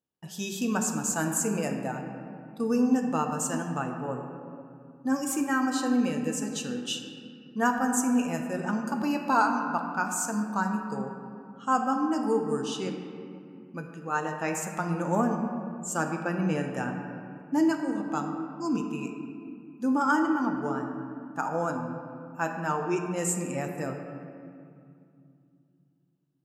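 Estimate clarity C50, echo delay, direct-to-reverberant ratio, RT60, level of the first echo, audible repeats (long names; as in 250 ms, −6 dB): 4.5 dB, no echo audible, 3.0 dB, 2.5 s, no echo audible, no echo audible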